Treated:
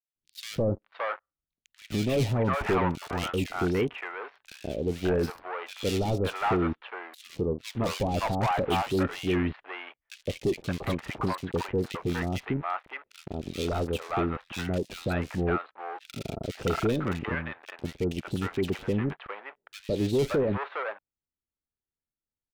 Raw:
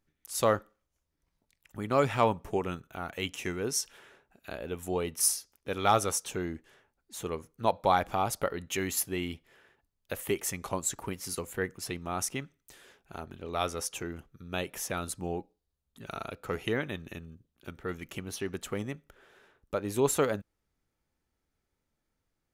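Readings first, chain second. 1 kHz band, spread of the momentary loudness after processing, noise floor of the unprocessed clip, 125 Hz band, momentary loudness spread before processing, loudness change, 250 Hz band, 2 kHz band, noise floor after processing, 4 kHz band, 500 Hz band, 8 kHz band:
+0.5 dB, 14 LU, -82 dBFS, +8.5 dB, 17 LU, +2.0 dB, +7.0 dB, +3.5 dB, under -85 dBFS, +1.5 dB, +3.0 dB, -12.5 dB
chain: steep low-pass 4.3 kHz 48 dB/octave; treble shelf 2.3 kHz -5 dB; waveshaping leveller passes 5; three bands offset in time highs, lows, mids 160/570 ms, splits 660/2500 Hz; trim -7 dB

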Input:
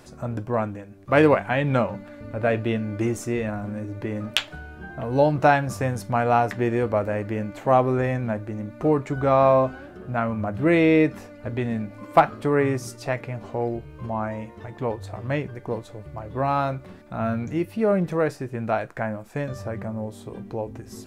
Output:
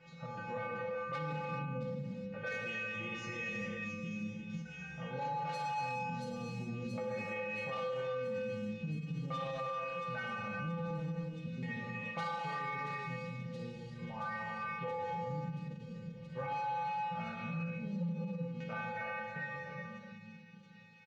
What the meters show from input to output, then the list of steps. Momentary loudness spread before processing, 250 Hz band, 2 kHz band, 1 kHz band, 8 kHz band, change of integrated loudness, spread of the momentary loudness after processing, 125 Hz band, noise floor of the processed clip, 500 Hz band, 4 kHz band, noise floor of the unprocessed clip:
15 LU, -16.5 dB, -10.5 dB, -13.5 dB, -17.5 dB, -15.5 dB, 7 LU, -14.0 dB, -52 dBFS, -19.0 dB, -14.5 dB, -44 dBFS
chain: fade out at the end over 3.38 s; LFO low-pass square 0.43 Hz 230–2400 Hz; resampled via 16 kHz; feedback comb 170 Hz, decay 0.8 s, harmonics odd, mix 100%; saturation -36 dBFS, distortion -7 dB; treble shelf 4.6 kHz +10 dB; compression 3:1, threshold -49 dBFS, peak gain reduction 8.5 dB; on a send: feedback echo behind a high-pass 676 ms, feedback 77%, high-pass 4 kHz, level -7 dB; on the sum: gated-style reverb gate 440 ms flat, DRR -2 dB; peak limiter -43 dBFS, peak gain reduction 9.5 dB; endings held to a fixed fall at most 140 dB/s; trim +11.5 dB

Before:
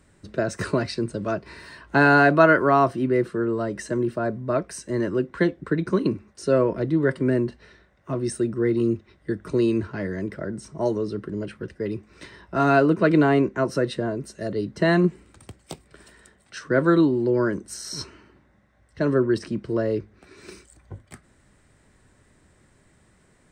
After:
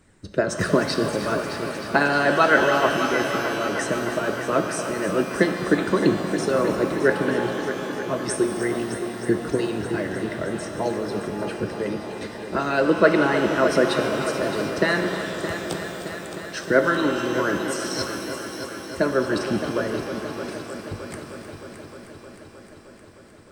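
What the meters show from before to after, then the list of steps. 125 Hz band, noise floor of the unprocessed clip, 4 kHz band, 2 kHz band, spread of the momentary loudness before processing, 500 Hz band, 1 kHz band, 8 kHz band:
-4.0 dB, -60 dBFS, +7.5 dB, +3.0 dB, 14 LU, +1.0 dB, +1.0 dB, +6.5 dB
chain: harmonic-percussive split harmonic -15 dB; multi-head delay 309 ms, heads first and second, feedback 71%, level -13 dB; pitch-shifted reverb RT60 2.9 s, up +12 st, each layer -8 dB, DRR 5.5 dB; trim +5.5 dB

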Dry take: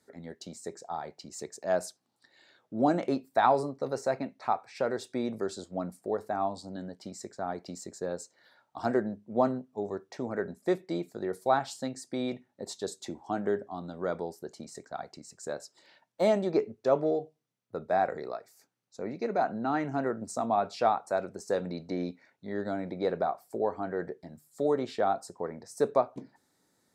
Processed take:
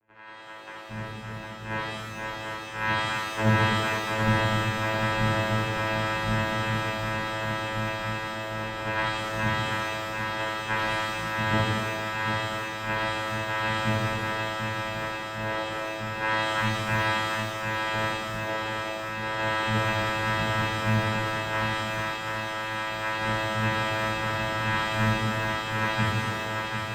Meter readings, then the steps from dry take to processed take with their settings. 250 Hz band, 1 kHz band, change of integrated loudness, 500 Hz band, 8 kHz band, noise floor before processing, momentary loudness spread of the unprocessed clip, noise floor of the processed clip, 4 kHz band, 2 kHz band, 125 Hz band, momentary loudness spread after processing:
+1.5 dB, +4.0 dB, +4.5 dB, -2.5 dB, +4.5 dB, -75 dBFS, 15 LU, -38 dBFS, +16.0 dB, +17.0 dB, +14.5 dB, 7 LU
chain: split-band scrambler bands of 1 kHz; Chebyshev low-pass 900 Hz, order 2; ever faster or slower copies 164 ms, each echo -3 st, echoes 3; thinning echo 743 ms, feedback 66%, high-pass 230 Hz, level -4 dB; vocoder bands 4, saw 109 Hz; pitch-shifted reverb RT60 1.3 s, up +12 st, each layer -8 dB, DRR -7.5 dB

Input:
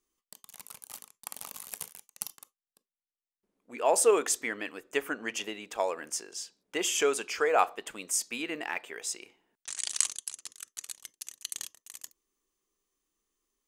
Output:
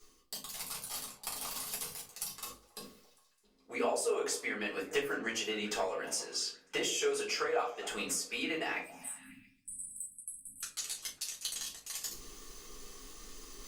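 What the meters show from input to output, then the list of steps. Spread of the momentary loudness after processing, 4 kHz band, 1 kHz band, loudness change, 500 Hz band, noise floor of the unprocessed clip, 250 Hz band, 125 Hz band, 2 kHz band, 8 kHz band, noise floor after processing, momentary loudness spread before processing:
17 LU, 0.0 dB, -7.5 dB, -5.0 dB, -5.5 dB, under -85 dBFS, -2.0 dB, no reading, -2.5 dB, -5.0 dB, -67 dBFS, 19 LU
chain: hum notches 50/100/150/200/250/300/350 Hz; reverse; upward compressor, threshold -39 dBFS; reverse; peaking EQ 4.6 kHz +6.5 dB 0.72 oct; compression 16:1, threshold -37 dBFS, peak gain reduction 20 dB; spectral selection erased 8.80–10.62 s, 280–7900 Hz; on a send: repeats whose band climbs or falls 136 ms, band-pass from 430 Hz, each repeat 0.7 oct, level -11 dB; on the sum: simulated room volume 150 m³, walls furnished, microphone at 3.9 m; trim -2 dB; Opus 64 kbps 48 kHz

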